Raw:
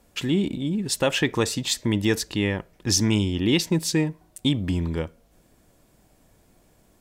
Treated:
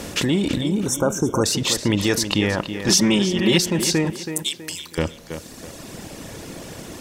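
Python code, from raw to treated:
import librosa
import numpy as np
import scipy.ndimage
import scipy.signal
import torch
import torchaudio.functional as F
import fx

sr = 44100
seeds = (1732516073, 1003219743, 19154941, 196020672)

p1 = fx.bin_compress(x, sr, power=0.6)
p2 = fx.comb(p1, sr, ms=5.3, depth=0.93, at=(2.88, 3.6))
p3 = fx.pre_emphasis(p2, sr, coefficient=0.97, at=(4.1, 4.98))
p4 = fx.dereverb_blind(p3, sr, rt60_s=2.0)
p5 = fx.over_compress(p4, sr, threshold_db=-31.0, ratio=-1.0)
p6 = p4 + (p5 * librosa.db_to_amplitude(-3.0))
p7 = fx.brickwall_bandstop(p6, sr, low_hz=1600.0, high_hz=5400.0, at=(0.71, 1.44))
y = p7 + fx.echo_tape(p7, sr, ms=325, feedback_pct=38, wet_db=-8.0, lp_hz=3700.0, drive_db=4.0, wow_cents=16, dry=0)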